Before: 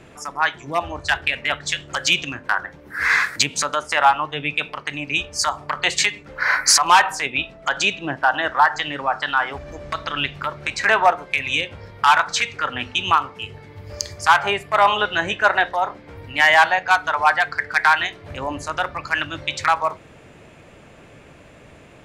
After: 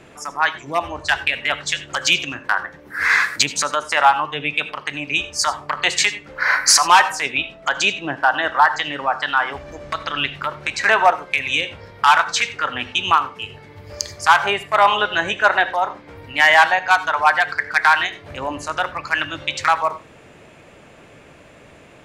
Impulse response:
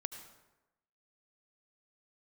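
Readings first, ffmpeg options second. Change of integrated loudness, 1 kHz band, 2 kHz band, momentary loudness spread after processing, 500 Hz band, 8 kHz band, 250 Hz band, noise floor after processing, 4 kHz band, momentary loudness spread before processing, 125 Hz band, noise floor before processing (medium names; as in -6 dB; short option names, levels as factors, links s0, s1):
+1.5 dB, +1.5 dB, +1.5 dB, 12 LU, +1.0 dB, +1.5 dB, 0.0 dB, -46 dBFS, +1.5 dB, 11 LU, -2.0 dB, -46 dBFS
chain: -filter_complex "[0:a]asplit=2[s0][s1];[1:a]atrim=start_sample=2205,afade=t=out:st=0.15:d=0.01,atrim=end_sample=7056,lowshelf=f=120:g=-12[s2];[s1][s2]afir=irnorm=-1:irlink=0,volume=2.11[s3];[s0][s3]amix=inputs=2:normalize=0,volume=0.447"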